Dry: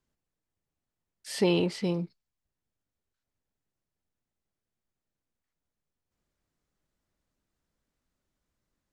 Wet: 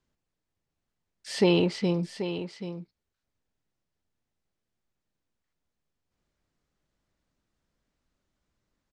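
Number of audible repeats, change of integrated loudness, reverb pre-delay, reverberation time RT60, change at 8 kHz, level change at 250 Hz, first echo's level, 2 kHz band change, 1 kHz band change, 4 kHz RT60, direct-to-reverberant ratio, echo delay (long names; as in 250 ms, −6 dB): 1, +1.5 dB, no reverb audible, no reverb audible, −0.5 dB, +3.5 dB, −10.5 dB, +3.5 dB, +3.0 dB, no reverb audible, no reverb audible, 783 ms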